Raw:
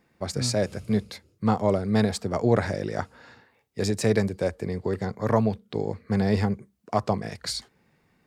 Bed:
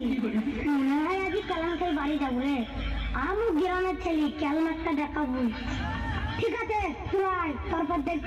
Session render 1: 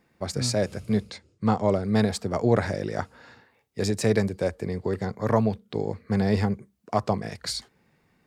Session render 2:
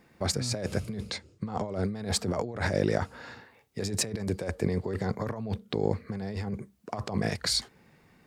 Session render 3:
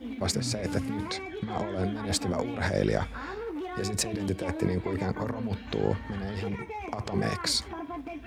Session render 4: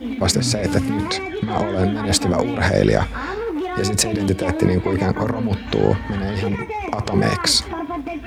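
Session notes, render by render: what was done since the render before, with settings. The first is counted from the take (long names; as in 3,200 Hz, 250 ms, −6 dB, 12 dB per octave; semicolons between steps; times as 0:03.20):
0:01.10–0:01.83: Butterworth low-pass 9,100 Hz 48 dB per octave
compressor whose output falls as the input rises −31 dBFS, ratio −1
mix in bed −9.5 dB
level +11 dB; brickwall limiter −2 dBFS, peak gain reduction 1 dB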